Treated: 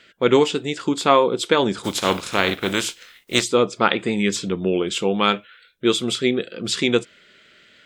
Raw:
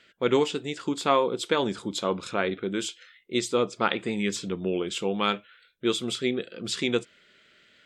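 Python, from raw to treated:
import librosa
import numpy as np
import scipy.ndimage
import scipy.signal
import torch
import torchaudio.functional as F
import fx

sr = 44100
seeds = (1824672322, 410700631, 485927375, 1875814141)

y = fx.spec_flatten(x, sr, power=0.5, at=(1.83, 3.42), fade=0.02)
y = F.gain(torch.from_numpy(y), 7.0).numpy()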